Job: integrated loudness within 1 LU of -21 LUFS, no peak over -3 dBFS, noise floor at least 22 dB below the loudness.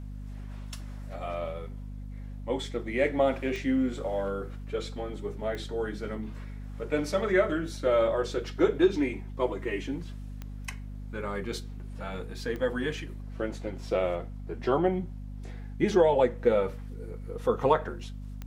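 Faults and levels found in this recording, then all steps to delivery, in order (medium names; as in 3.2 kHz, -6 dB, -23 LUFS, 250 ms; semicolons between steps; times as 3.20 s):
clicks found 5; hum 50 Hz; highest harmonic 250 Hz; hum level -37 dBFS; loudness -29.5 LUFS; peak level -10.5 dBFS; loudness target -21.0 LUFS
-> de-click; de-hum 50 Hz, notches 5; trim +8.5 dB; peak limiter -3 dBFS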